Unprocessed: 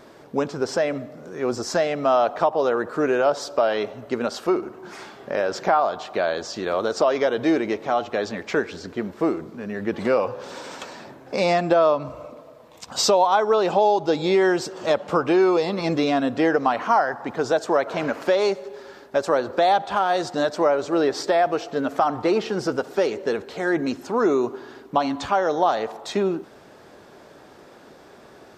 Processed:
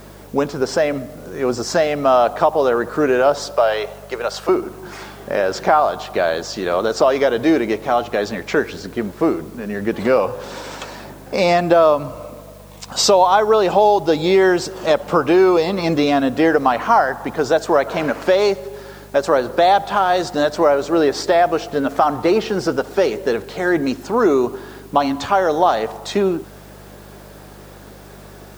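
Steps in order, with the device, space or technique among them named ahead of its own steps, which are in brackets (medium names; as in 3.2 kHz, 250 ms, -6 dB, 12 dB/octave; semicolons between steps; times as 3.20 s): 3.51–4.49 s: high-pass 440 Hz 24 dB/octave; video cassette with head-switching buzz (mains buzz 50 Hz, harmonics 4, -48 dBFS -2 dB/octave; white noise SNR 33 dB); trim +5 dB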